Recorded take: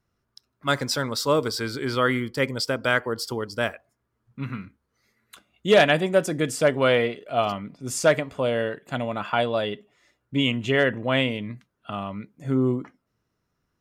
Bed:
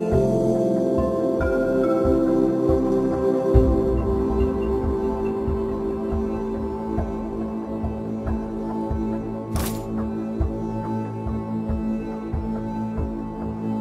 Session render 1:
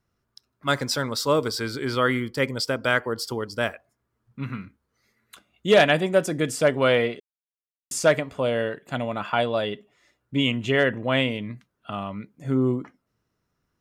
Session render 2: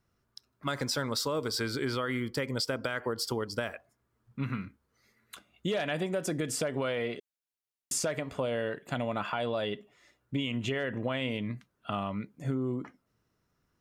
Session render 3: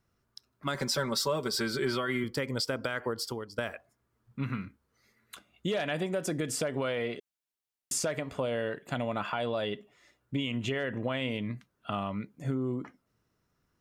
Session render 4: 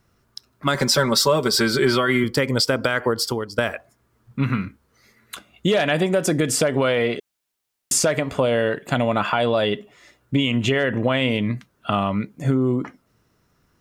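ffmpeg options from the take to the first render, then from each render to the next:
-filter_complex "[0:a]asplit=3[a][b][c];[a]atrim=end=7.2,asetpts=PTS-STARTPTS,afade=t=out:st=7.196:d=0.004:c=hsin[d];[b]atrim=start=7.2:end=7.91,asetpts=PTS-STARTPTS,volume=0[e];[c]atrim=start=7.91,asetpts=PTS-STARTPTS,afade=t=in:d=0.004:c=hsin[f];[d][e][f]concat=n=3:v=0:a=1"
-af "alimiter=limit=-17dB:level=0:latency=1:release=87,acompressor=threshold=-28dB:ratio=6"
-filter_complex "[0:a]asettb=1/sr,asplit=3[a][b][c];[a]atrim=end=0.744[d];[b]atrim=start=0.74:end=2.24,asetpts=PTS-STARTPTS,afade=t=in:d=0.004:c=qsin,afade=t=out:st=1.496:d=0.004:c=qsin,aecho=1:1:5.2:0.7,atrim=end_sample=66150[e];[c]atrim=start=2.236[f];[d][e]acrossfade=d=0.004:c1=hsin:c2=qsin[g];[g][f]acrossfade=d=0.004:c1=qsin:c2=hsin,asplit=2[h][i];[h]atrim=end=3.58,asetpts=PTS-STARTPTS,afade=t=out:st=3.09:d=0.49:silence=0.251189[j];[i]atrim=start=3.58,asetpts=PTS-STARTPTS,afade=t=in:d=0.004:c=hsin:silence=0.251189[k];[j][k]concat=n=2:v=0:a=1"
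-af "volume=12dB"

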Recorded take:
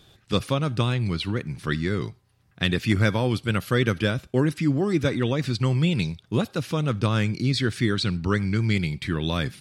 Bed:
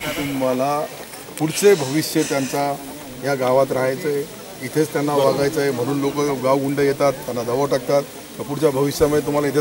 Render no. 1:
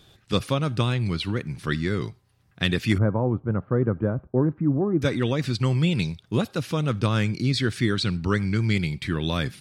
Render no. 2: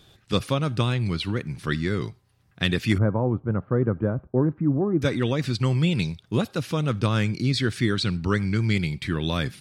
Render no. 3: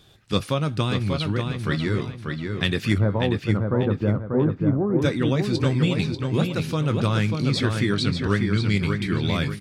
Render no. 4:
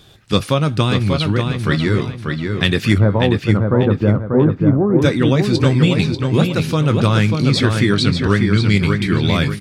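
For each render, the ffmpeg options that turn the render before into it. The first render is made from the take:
-filter_complex "[0:a]asettb=1/sr,asplit=3[a][b][c];[a]atrim=end=2.984[d];[b]atrim=start=2.98:end=5.02,asetpts=PTS-STARTPTS,afade=t=in:d=0.004:c=qsin,afade=t=out:st=2.036:d=0.004:c=qsin,lowpass=f=1.1k:w=0.5412,lowpass=f=1.1k:w=1.3066[e];[c]atrim=start=5.016[f];[d][e]acrossfade=d=0.004:c1=hsin:c2=qsin[g];[g][f]acrossfade=d=0.004:c1=qsin:c2=hsin"
-af anull
-filter_complex "[0:a]asplit=2[a][b];[b]adelay=20,volume=-13dB[c];[a][c]amix=inputs=2:normalize=0,asplit=2[d][e];[e]adelay=590,lowpass=f=4.6k:p=1,volume=-4.5dB,asplit=2[f][g];[g]adelay=590,lowpass=f=4.6k:p=1,volume=0.39,asplit=2[h][i];[i]adelay=590,lowpass=f=4.6k:p=1,volume=0.39,asplit=2[j][k];[k]adelay=590,lowpass=f=4.6k:p=1,volume=0.39,asplit=2[l][m];[m]adelay=590,lowpass=f=4.6k:p=1,volume=0.39[n];[d][f][h][j][l][n]amix=inputs=6:normalize=0"
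-af "volume=7.5dB,alimiter=limit=-1dB:level=0:latency=1"

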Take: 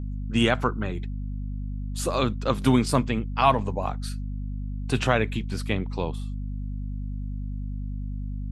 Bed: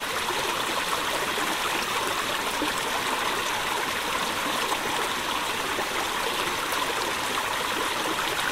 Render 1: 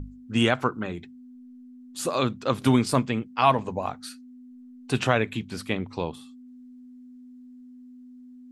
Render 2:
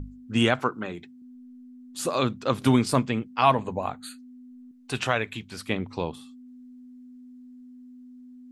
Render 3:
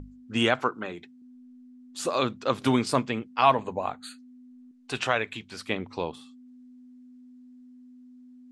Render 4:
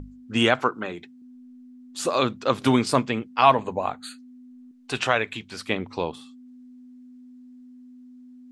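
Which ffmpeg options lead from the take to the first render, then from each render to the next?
-af "bandreject=f=50:t=h:w=6,bandreject=f=100:t=h:w=6,bandreject=f=150:t=h:w=6,bandreject=f=200:t=h:w=6"
-filter_complex "[0:a]asettb=1/sr,asplit=3[a][b][c];[a]atrim=end=0.594[d];[b]atrim=start=0.59:end=1.22,asetpts=PTS-STARTPTS,afade=t=in:d=0.004:c=qsin,afade=t=out:st=0.626:d=0.004:c=qsin,highpass=f=210:p=1[e];[c]atrim=start=1.216[f];[d][e]acrossfade=d=0.004:c1=hsin:c2=qsin[g];[g][f]acrossfade=d=0.004:c1=qsin:c2=hsin,asettb=1/sr,asplit=3[h][i][j];[h]atrim=end=3.544[k];[i]atrim=start=3.54:end=4.19,asetpts=PTS-STARTPTS,afade=t=in:d=0.004:c=qsin,afade=t=out:st=0.646:d=0.004:c=qsin,asuperstop=centerf=5400:order=8:qfactor=3[l];[j]atrim=start=4.186[m];[k][l]acrossfade=d=0.004:c1=hsin:c2=qsin[n];[n][m]acrossfade=d=0.004:c1=qsin:c2=hsin,asettb=1/sr,asplit=3[o][p][q];[o]atrim=end=4.714[r];[p]atrim=start=4.71:end=5.68,asetpts=PTS-STARTPTS,afade=t=in:d=0.004:c=qsin,afade=t=out:st=0.966:d=0.004:c=qsin,equalizer=f=210:w=0.43:g=-7.5[s];[q]atrim=start=5.676[t];[r][s]acrossfade=d=0.004:c1=hsin:c2=qsin[u];[u][t]acrossfade=d=0.004:c1=qsin:c2=hsin"
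-af "lowpass=8.3k,bass=f=250:g=-7,treble=f=4k:g=0"
-af "volume=3.5dB"

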